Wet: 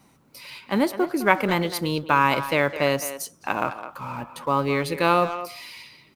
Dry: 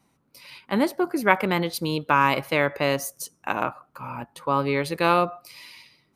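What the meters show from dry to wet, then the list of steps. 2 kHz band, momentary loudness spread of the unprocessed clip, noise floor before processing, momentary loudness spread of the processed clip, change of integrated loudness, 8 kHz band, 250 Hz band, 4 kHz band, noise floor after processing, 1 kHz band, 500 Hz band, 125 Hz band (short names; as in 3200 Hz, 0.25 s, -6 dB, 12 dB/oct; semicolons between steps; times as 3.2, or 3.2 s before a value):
+0.5 dB, 15 LU, -68 dBFS, 15 LU, +0.5 dB, +1.5 dB, +1.0 dB, +1.0 dB, -58 dBFS, +0.5 dB, +1.0 dB, +1.0 dB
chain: G.711 law mismatch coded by mu; speakerphone echo 0.21 s, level -11 dB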